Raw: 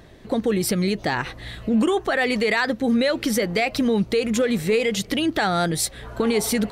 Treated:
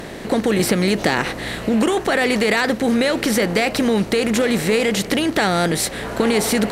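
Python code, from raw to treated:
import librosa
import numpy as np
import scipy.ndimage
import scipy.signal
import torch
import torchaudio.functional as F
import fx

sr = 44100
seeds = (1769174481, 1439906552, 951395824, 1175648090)

y = fx.bin_compress(x, sr, power=0.6)
y = fx.band_squash(y, sr, depth_pct=70, at=(0.59, 1.19))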